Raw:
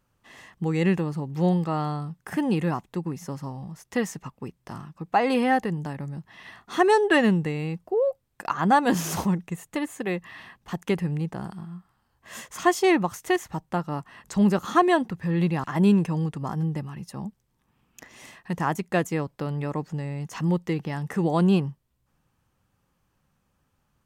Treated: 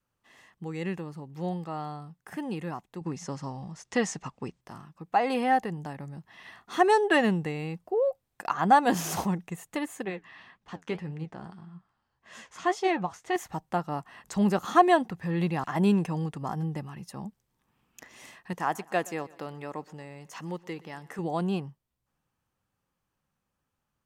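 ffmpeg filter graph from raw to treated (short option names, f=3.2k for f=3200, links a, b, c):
-filter_complex "[0:a]asettb=1/sr,asplit=3[a][b][c];[a]atrim=end=3.014[d];[b]atrim=start=3.01:end=4.61,asetpts=PTS-STARTPTS,afade=t=in:d=0.004:c=qsin,afade=t=out:st=1.596:d=0.004:c=qsin,lowpass=f=7.5k:w=0.5412,lowpass=f=7.5k:w=1.3066,highshelf=f=5.4k:g=6,acontrast=84[e];[c]atrim=start=4.606[f];[d][e]acrossfade=d=0.004:c1=hsin:c2=qsin[g];[g][f]acrossfade=d=0.004:c1=qsin:c2=hsin,asettb=1/sr,asplit=3[h][i][j];[h]atrim=end=10.054[k];[i]atrim=start=10.05:end=13.36,asetpts=PTS-STARTPTS,afade=t=in:d=0.004:c=qsin,afade=t=out:st=3.306:d=0.004:c=qsin,lowpass=5.9k,flanger=delay=4.2:depth=9.5:regen=60:speed=1.8:shape=triangular[l];[j]atrim=start=13.356[m];[k][l]acrossfade=d=0.004:c1=hsin:c2=qsin[n];[n][m]acrossfade=d=0.004:c1=qsin:c2=hsin,asettb=1/sr,asplit=3[o][p][q];[o]atrim=end=18.534[r];[p]atrim=start=18.53:end=21.19,asetpts=PTS-STARTPTS,afade=t=in:d=0.004:c=qsin,afade=t=out:st=2.656:d=0.004:c=qsin,equalizer=f=65:w=0.46:g=-14,aecho=1:1:122|244|366|488:0.0794|0.0453|0.0258|0.0147,atrim=end_sample=117306[s];[q]atrim=start=21.186[t];[r][s]acrossfade=d=0.004:c1=hsin:c2=qsin[u];[u][t]acrossfade=d=0.004:c1=qsin:c2=hsin,lowshelf=f=220:g=-5,dynaudnorm=f=930:g=11:m=9dB,adynamicequalizer=threshold=0.0178:dfrequency=740:dqfactor=4.7:tfrequency=740:tqfactor=4.7:attack=5:release=100:ratio=0.375:range=3:mode=boostabove:tftype=bell,volume=-8.5dB"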